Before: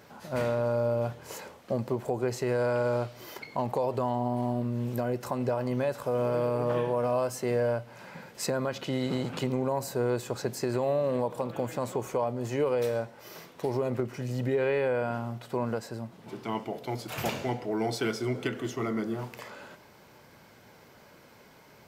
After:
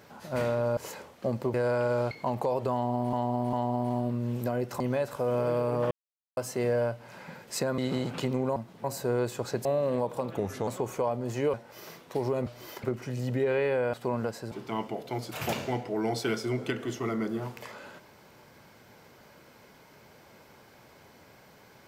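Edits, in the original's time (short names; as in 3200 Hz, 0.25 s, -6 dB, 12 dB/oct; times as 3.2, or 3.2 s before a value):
0.77–1.23 cut
2–2.49 cut
3.06–3.43 move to 13.95
4.05–4.45 loop, 3 plays
5.32–5.67 cut
6.78–7.24 mute
8.65–8.97 cut
10.56–10.86 cut
11.58–11.83 speed 82%
12.69–13.02 cut
15.05–15.42 cut
16–16.28 move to 9.75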